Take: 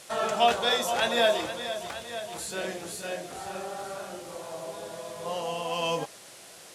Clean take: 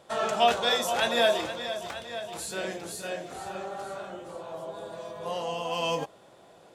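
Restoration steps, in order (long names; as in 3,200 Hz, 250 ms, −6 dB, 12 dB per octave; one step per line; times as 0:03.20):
noise reduction from a noise print 6 dB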